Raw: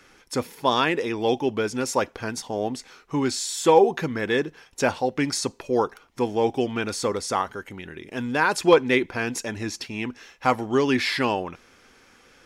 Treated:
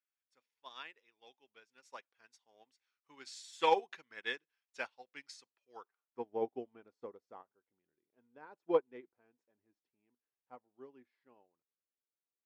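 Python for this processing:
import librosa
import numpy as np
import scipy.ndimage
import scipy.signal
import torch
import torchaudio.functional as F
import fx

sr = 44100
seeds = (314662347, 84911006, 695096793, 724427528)

y = fx.doppler_pass(x, sr, speed_mps=6, closest_m=8.2, pass_at_s=3.73)
y = fx.filter_sweep_bandpass(y, sr, from_hz=2800.0, to_hz=500.0, start_s=5.7, end_s=6.31, q=0.74)
y = fx.upward_expand(y, sr, threshold_db=-45.0, expansion=2.5)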